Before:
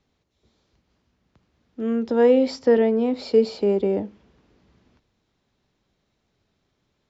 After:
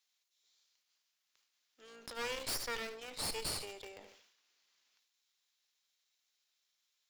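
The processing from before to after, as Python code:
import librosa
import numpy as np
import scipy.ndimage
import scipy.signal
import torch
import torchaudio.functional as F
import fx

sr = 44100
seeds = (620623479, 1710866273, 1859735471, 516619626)

p1 = fx.octave_divider(x, sr, octaves=2, level_db=-1.0)
p2 = fx.highpass(p1, sr, hz=1300.0, slope=6)
p3 = np.diff(p2, prepend=0.0)
p4 = fx.transient(p3, sr, attack_db=0, sustain_db=-6)
p5 = fx.quant_dither(p4, sr, seeds[0], bits=8, dither='none')
p6 = p4 + F.gain(torch.from_numpy(p5), -12.0).numpy()
p7 = fx.cheby_harmonics(p6, sr, harmonics=(3, 5, 8), levels_db=(-6, -9, -11), full_scale_db=-26.0)
p8 = p7 + fx.echo_feedback(p7, sr, ms=74, feedback_pct=38, wet_db=-19.0, dry=0)
p9 = fx.sustainer(p8, sr, db_per_s=64.0)
y = F.gain(torch.from_numpy(p9), 1.0).numpy()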